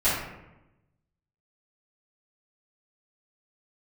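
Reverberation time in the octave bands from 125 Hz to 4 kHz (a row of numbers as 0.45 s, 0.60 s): 1.4 s, 1.2 s, 1.0 s, 0.90 s, 0.85 s, 0.55 s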